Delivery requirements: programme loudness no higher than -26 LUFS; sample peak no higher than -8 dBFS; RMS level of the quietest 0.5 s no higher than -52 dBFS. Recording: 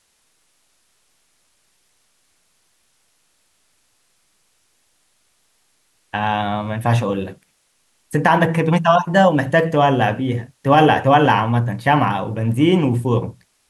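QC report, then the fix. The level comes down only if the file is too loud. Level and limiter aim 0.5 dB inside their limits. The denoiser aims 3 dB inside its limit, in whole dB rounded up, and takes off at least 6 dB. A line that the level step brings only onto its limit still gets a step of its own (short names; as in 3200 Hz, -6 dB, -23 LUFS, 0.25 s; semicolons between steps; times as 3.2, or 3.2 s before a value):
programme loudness -17.0 LUFS: fail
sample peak -2.0 dBFS: fail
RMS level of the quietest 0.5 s -63 dBFS: OK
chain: gain -9.5 dB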